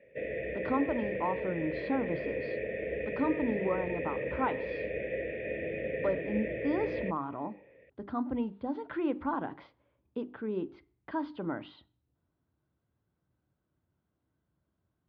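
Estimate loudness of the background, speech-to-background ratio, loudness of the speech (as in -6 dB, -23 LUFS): -36.0 LUFS, 0.5 dB, -35.5 LUFS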